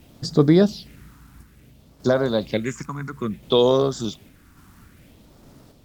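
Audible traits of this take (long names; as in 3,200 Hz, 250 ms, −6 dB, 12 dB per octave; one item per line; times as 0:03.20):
phaser sweep stages 4, 0.59 Hz, lowest notch 540–2,600 Hz
a quantiser's noise floor 10 bits, dither none
sample-and-hold tremolo
Opus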